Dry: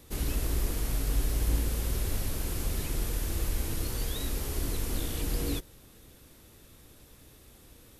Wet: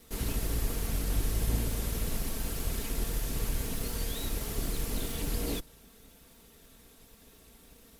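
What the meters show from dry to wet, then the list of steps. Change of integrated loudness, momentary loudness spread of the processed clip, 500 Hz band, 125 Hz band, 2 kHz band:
−1.5 dB, 4 LU, 0.0 dB, −2.0 dB, −0.5 dB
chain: lower of the sound and its delayed copy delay 4.4 ms

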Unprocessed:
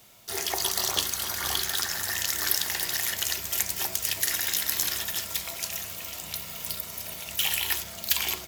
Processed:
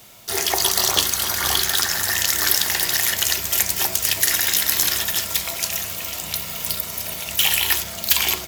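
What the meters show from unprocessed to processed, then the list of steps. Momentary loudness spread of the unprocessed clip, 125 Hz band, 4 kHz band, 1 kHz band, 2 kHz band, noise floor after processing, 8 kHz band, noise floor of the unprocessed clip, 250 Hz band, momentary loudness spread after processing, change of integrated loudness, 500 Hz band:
9 LU, +8.5 dB, +8.5 dB, +8.5 dB, +8.5 dB, −32 dBFS, +8.0 dB, −41 dBFS, +8.5 dB, 8 LU, +8.5 dB, +8.5 dB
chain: hard clipping −14.5 dBFS, distortion −19 dB
level +8.5 dB

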